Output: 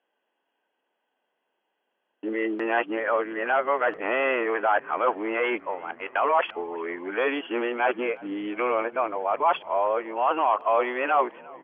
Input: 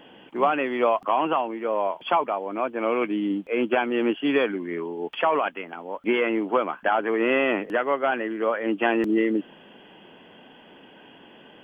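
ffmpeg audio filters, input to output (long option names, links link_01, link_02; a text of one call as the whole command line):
ffmpeg -i in.wav -filter_complex "[0:a]areverse,agate=range=-29dB:threshold=-37dB:ratio=16:detection=peak,asplit=2[link_01][link_02];[link_02]alimiter=limit=-18.5dB:level=0:latency=1:release=18,volume=3dB[link_03];[link_01][link_03]amix=inputs=2:normalize=0,highpass=550,lowpass=2200,asplit=5[link_04][link_05][link_06][link_07][link_08];[link_05]adelay=353,afreqshift=-48,volume=-23dB[link_09];[link_06]adelay=706,afreqshift=-96,volume=-27.4dB[link_10];[link_07]adelay=1059,afreqshift=-144,volume=-31.9dB[link_11];[link_08]adelay=1412,afreqshift=-192,volume=-36.3dB[link_12];[link_04][link_09][link_10][link_11][link_12]amix=inputs=5:normalize=0,volume=-3dB" out.wav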